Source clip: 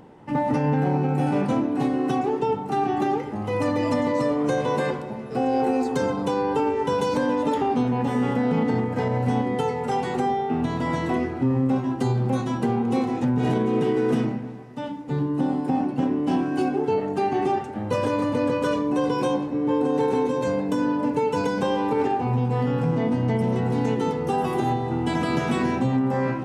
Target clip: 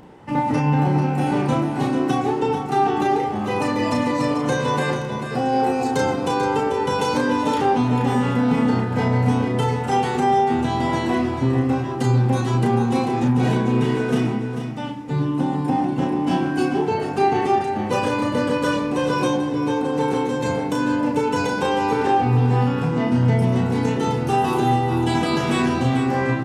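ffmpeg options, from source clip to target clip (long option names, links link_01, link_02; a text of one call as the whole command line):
ffmpeg -i in.wav -filter_complex "[0:a]equalizer=frequency=350:width=0.3:gain=-4.5,asplit=2[link_01][link_02];[link_02]adelay=33,volume=-4dB[link_03];[link_01][link_03]amix=inputs=2:normalize=0,aecho=1:1:441:0.376,volume=5.5dB" out.wav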